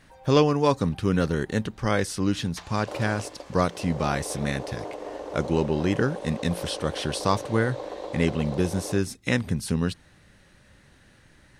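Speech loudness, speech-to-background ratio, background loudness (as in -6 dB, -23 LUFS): -26.5 LUFS, 10.5 dB, -37.0 LUFS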